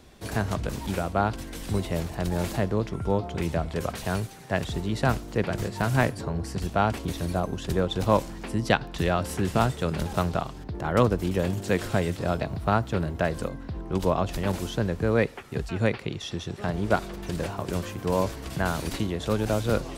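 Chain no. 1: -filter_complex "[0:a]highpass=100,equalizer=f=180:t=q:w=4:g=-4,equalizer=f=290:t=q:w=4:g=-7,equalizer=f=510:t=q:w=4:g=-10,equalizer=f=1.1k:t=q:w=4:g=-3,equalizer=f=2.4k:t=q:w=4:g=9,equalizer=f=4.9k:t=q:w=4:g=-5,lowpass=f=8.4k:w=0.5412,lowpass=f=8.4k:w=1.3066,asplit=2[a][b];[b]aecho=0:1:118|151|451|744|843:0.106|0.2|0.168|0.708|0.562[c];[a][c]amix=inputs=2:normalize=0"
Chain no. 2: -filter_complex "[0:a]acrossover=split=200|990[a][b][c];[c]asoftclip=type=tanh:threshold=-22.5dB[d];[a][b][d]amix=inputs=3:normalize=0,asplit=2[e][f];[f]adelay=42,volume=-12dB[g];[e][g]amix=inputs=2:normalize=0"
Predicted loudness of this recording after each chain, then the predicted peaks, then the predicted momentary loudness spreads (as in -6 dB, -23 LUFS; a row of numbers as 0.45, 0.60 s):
-27.5, -28.0 LUFS; -5.0, -8.0 dBFS; 6, 7 LU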